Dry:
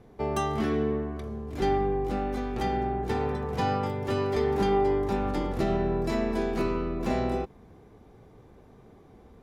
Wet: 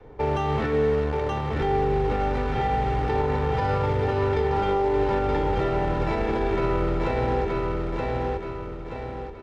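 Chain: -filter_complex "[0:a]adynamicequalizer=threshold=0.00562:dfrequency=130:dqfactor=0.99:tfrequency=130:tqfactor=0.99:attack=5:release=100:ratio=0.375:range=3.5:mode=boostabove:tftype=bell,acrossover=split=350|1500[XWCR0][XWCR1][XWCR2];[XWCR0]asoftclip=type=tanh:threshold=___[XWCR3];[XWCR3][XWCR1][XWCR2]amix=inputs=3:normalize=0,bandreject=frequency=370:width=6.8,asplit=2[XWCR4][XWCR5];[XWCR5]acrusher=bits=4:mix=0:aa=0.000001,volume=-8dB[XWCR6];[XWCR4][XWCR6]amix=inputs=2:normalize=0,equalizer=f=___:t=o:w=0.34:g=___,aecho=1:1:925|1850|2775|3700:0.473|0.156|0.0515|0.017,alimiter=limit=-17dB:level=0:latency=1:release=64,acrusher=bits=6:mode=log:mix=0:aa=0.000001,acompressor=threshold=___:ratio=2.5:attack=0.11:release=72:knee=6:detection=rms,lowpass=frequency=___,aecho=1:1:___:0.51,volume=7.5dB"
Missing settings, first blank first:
-28dB, 190, -4, -29dB, 2700, 2.2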